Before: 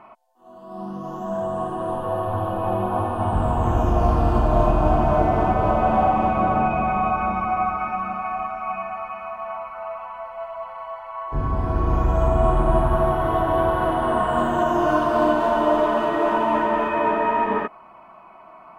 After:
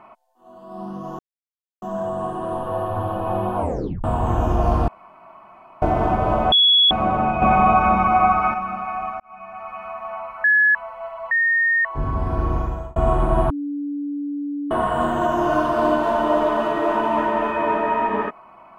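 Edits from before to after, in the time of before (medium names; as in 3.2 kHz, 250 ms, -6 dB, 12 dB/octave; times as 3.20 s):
1.19 s: insert silence 0.63 s
2.94 s: tape stop 0.47 s
4.25–5.19 s: room tone
5.89–6.28 s: bleep 3.37 kHz -11 dBFS
6.79–7.91 s: gain +6.5 dB
8.57–9.21 s: fade in
9.81–10.12 s: bleep 1.7 kHz -12 dBFS
10.68–11.22 s: bleep 1.84 kHz -15 dBFS
11.83–12.33 s: fade out
12.87–14.08 s: bleep 288 Hz -23.5 dBFS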